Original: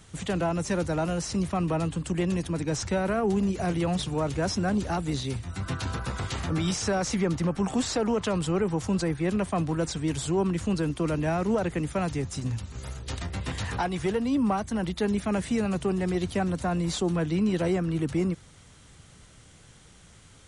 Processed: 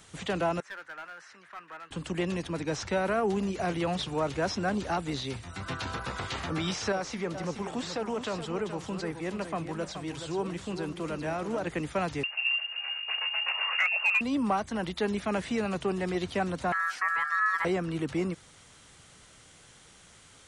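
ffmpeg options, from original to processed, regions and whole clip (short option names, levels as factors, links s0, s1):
-filter_complex "[0:a]asettb=1/sr,asplit=3[s0][s1][s2];[s0]atrim=end=0.604[s3];[s1]atrim=start=0.6:end=1.91,asetpts=PTS-STARTPTS,afade=t=in:d=0.004:c=qsin,afade=t=out:st=1.306:d=0.004:c=qsin,bandpass=f=1600:t=q:w=4.1,aeval=exprs='clip(val(0),-1,0.00891)':c=same[s4];[s2]atrim=start=1.906[s5];[s3][s4]acrossfade=d=0.004:c1=hsin:c2=qsin[s6];[s6][s5]acrossfade=d=0.004:c1=qsin:c2=hsin,asettb=1/sr,asplit=3[s7][s8][s9];[s7]atrim=end=6.924[s10];[s8]atrim=start=6.92:end=11.67,asetpts=PTS-STARTPTS,afade=t=in:d=0.004:c=qsin,afade=t=out:st=4.746:d=0.004:c=qsin,flanger=delay=5:depth=8.7:regen=85:speed=1.9:shape=sinusoidal,aecho=1:1:424:0.355,atrim=end_sample=209475[s11];[s9]atrim=start=11.666[s12];[s10][s11]acrossfade=d=0.004:c1=hsin:c2=qsin[s13];[s13][s12]acrossfade=d=0.004:c1=qsin:c2=hsin,asettb=1/sr,asplit=3[s14][s15][s16];[s14]atrim=end=12.234[s17];[s15]atrim=start=12.23:end=14.21,asetpts=PTS-STARTPTS,afade=t=in:d=0.004:c=qsin,afade=t=out:st=1.976:d=0.004:c=qsin,lowpass=f=2500:t=q:w=0.5098,lowpass=f=2500:t=q:w=0.6013,lowpass=f=2500:t=q:w=0.9,lowpass=f=2500:t=q:w=2.563,afreqshift=-2900,volume=10.6,asoftclip=hard,volume=0.0944,lowshelf=f=420:t=q:w=1.5:g=-13[s18];[s16]atrim=start=14.206[s19];[s17][s18]acrossfade=d=0.004:c1=hsin:c2=qsin[s20];[s20][s19]acrossfade=d=0.004:c1=qsin:c2=hsin,asettb=1/sr,asplit=3[s21][s22][s23];[s21]atrim=end=16.724[s24];[s22]atrim=start=16.72:end=17.65,asetpts=PTS-STARTPTS,afade=t=in:d=0.004:c=qsin,afade=t=out:st=0.926:d=0.004:c=qsin,equalizer=f=2200:w=0.47:g=-9,aeval=exprs='val(0)+0.00251*sin(2*PI*740*n/s)':c=same,aeval=exprs='val(0)*sin(2*PI*1500*n/s)':c=same[s25];[s23]atrim=start=17.646[s26];[s24][s25]acrossfade=d=0.004:c1=hsin:c2=qsin[s27];[s27][s26]acrossfade=d=0.004:c1=qsin:c2=hsin,acrossover=split=5400[s28][s29];[s29]acompressor=threshold=0.00158:ratio=4:attack=1:release=60[s30];[s28][s30]amix=inputs=2:normalize=0,lowshelf=f=250:g=-11.5,volume=1.19"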